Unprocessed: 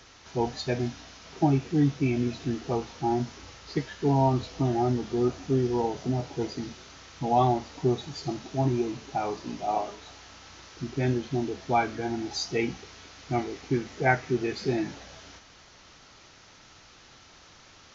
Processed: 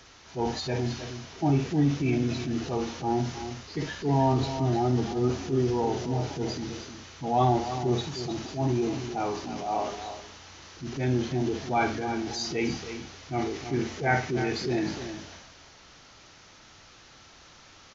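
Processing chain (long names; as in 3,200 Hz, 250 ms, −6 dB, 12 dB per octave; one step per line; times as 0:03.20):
flutter between parallel walls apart 9.6 metres, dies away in 0.27 s
transient designer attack −6 dB, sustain +5 dB
single-tap delay 311 ms −10.5 dB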